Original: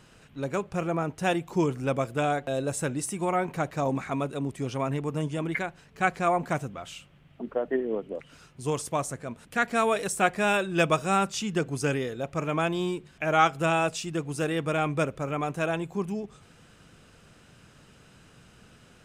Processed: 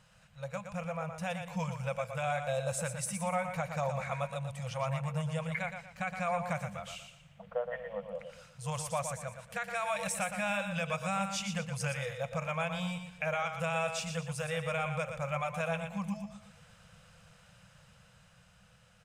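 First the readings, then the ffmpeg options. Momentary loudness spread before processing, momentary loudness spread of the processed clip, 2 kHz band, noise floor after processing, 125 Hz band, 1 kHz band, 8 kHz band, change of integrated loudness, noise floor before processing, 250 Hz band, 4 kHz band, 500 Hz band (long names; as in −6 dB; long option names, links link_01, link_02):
9 LU, 8 LU, −6.0 dB, −62 dBFS, −4.5 dB, −8.0 dB, −3.5 dB, −7.0 dB, −56 dBFS, −10.0 dB, −5.5 dB, −8.0 dB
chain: -filter_complex "[0:a]afftfilt=real='re*(1-between(b*sr/4096,210,470))':imag='im*(1-between(b*sr/4096,210,470))':win_size=4096:overlap=0.75,adynamicequalizer=threshold=0.00355:dfrequency=2300:dqfactor=5.7:tfrequency=2300:tqfactor=5.7:attack=5:release=100:ratio=0.375:range=3.5:mode=boostabove:tftype=bell,alimiter=limit=-20dB:level=0:latency=1:release=149,dynaudnorm=framelen=350:gausssize=9:maxgain=4dB,asplit=2[link_01][link_02];[link_02]aecho=0:1:118|236|354|472:0.422|0.143|0.0487|0.0166[link_03];[link_01][link_03]amix=inputs=2:normalize=0,volume=-7.5dB"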